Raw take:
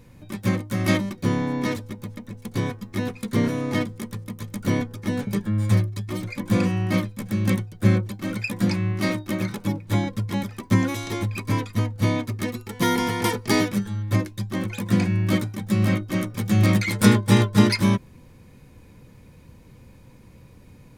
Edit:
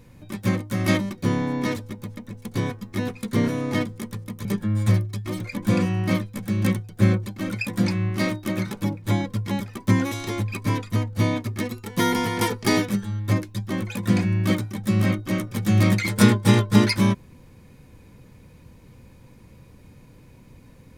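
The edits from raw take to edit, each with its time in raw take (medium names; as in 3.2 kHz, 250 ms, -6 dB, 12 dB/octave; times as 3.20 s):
4.45–5.28 s: delete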